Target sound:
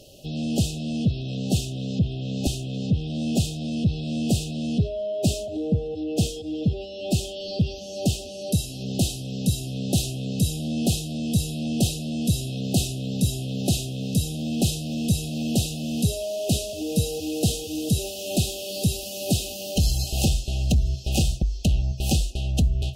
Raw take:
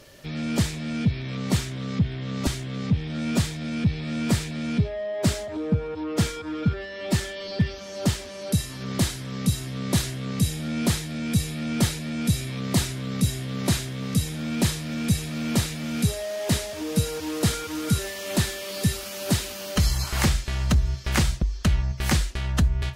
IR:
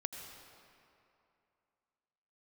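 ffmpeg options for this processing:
-af "aeval=exprs='0.299*(cos(1*acos(clip(val(0)/0.299,-1,1)))-cos(1*PI/2))+0.0133*(cos(5*acos(clip(val(0)/0.299,-1,1)))-cos(5*PI/2))':channel_layout=same,afftfilt=real='re*(1-between(b*sr/4096,810,2500))':imag='im*(1-between(b*sr/4096,810,2500))':win_size=4096:overlap=0.75"

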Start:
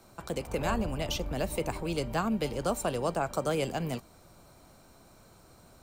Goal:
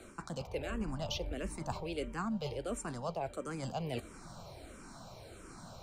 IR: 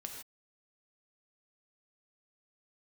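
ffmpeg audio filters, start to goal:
-filter_complex "[0:a]lowpass=8900,areverse,acompressor=threshold=-42dB:ratio=6,areverse,asplit=2[link_01][link_02];[link_02]afreqshift=-1.5[link_03];[link_01][link_03]amix=inputs=2:normalize=1,volume=9dB"

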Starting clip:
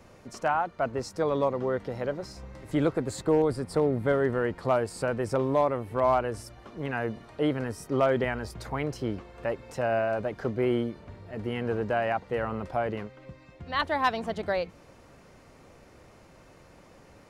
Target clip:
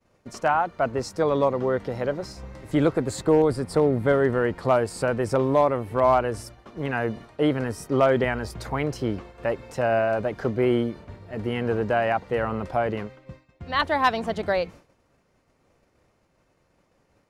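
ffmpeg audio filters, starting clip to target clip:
ffmpeg -i in.wav -af "agate=range=-33dB:threshold=-42dB:ratio=3:detection=peak,volume=4.5dB" out.wav

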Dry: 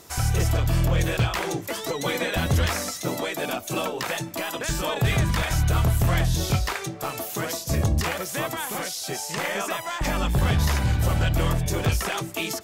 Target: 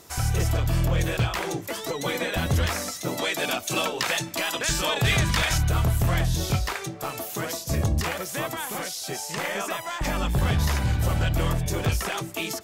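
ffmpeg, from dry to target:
ffmpeg -i in.wav -filter_complex "[0:a]asettb=1/sr,asplit=3[link_01][link_02][link_03];[link_01]atrim=end=3.184[link_04];[link_02]atrim=start=3.18:end=5.58,asetpts=PTS-STARTPTS,afade=type=in:duration=0.004:curve=qsin,afade=type=out:start_time=2.396:duration=0.004:curve=qsin,equalizer=frequency=4200:width=0.36:gain=7.5[link_05];[link_03]atrim=start=5.576[link_06];[link_04][link_05]acrossfade=duration=0.004:curve1=hsin:curve2=qsin[link_07];[link_07][link_06]acrossfade=duration=0.004:curve1=qsin:curve2=hsin,volume=-1.5dB" out.wav

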